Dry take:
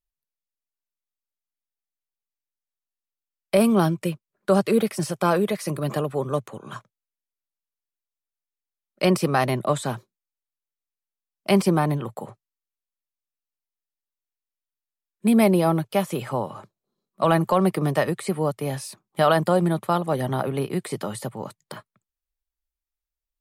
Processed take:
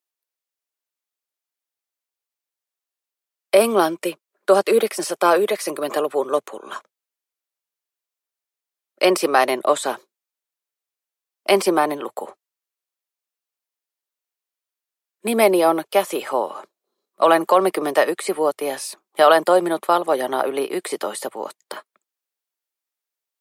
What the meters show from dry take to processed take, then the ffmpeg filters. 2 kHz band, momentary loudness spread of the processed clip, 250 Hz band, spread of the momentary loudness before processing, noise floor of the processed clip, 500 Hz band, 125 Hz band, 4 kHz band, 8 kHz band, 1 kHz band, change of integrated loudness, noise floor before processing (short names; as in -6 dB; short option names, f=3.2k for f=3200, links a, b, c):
+6.0 dB, 17 LU, -2.5 dB, 16 LU, under -85 dBFS, +5.5 dB, -17.0 dB, +6.0 dB, +6.0 dB, +6.0 dB, +3.5 dB, under -85 dBFS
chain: -af "highpass=f=330:w=0.5412,highpass=f=330:w=1.3066,volume=6dB"